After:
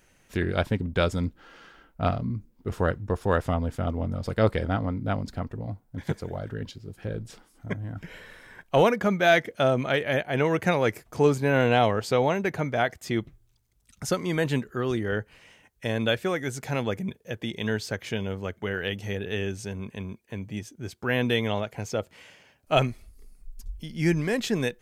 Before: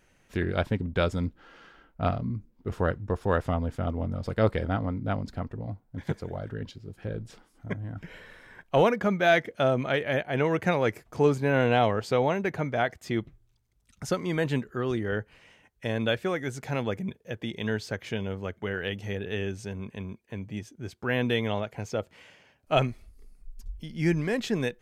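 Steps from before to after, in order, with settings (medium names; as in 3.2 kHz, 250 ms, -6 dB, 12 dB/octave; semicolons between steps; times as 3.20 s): treble shelf 5.5 kHz +7 dB; trim +1.5 dB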